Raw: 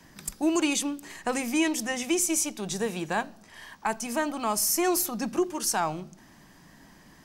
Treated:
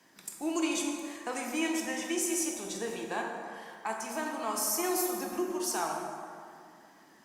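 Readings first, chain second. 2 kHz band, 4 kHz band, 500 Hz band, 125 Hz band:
-4.5 dB, -5.5 dB, -4.5 dB, -12.5 dB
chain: HPF 270 Hz 12 dB/oct; plate-style reverb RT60 2.4 s, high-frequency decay 0.5×, DRR 0 dB; gain -7.5 dB; Opus 64 kbps 48000 Hz

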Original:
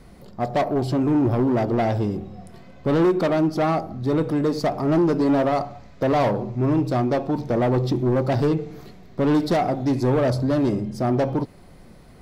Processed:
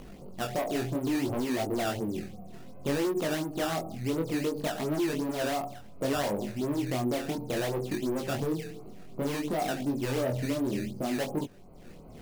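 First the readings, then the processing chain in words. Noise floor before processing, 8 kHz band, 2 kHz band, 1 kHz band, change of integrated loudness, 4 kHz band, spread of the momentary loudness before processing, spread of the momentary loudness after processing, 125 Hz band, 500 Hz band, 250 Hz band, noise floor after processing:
-46 dBFS, n/a, -3.5 dB, -10.0 dB, -9.5 dB, -0.5 dB, 7 LU, 8 LU, -12.0 dB, -9.5 dB, -9.5 dB, -47 dBFS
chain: Wiener smoothing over 25 samples; bell 68 Hz -7.5 dB 2.5 oct; upward compressor, threshold -36 dBFS; limiter -17.5 dBFS, peak gain reduction 4 dB; compressor, threshold -24 dBFS, peak gain reduction 4.5 dB; decimation with a swept rate 12×, swing 160% 2.8 Hz; chorus 0.62 Hz, delay 19.5 ms, depth 5.6 ms

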